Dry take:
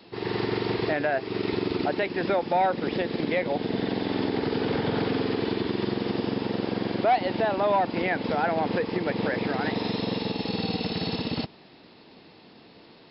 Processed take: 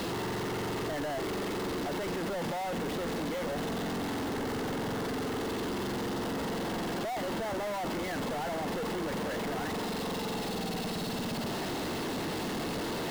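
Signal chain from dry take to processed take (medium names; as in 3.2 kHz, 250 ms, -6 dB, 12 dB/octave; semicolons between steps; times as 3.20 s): one-bit comparator; treble shelf 2.5 kHz -8.5 dB; band-stop 2.4 kHz, Q 13; trim -5 dB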